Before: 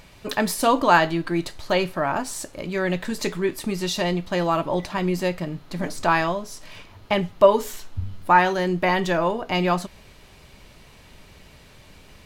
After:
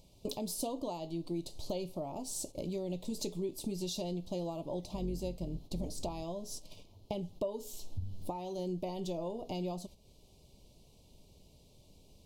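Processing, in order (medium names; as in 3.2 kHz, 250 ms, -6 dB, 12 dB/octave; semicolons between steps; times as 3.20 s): 4.86–6.23 s: octave divider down 2 oct, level -1 dB; gate -38 dBFS, range -12 dB; compression 4:1, threshold -37 dBFS, peak gain reduction 23 dB; Butterworth band-stop 1.6 kHz, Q 0.54; trim +1 dB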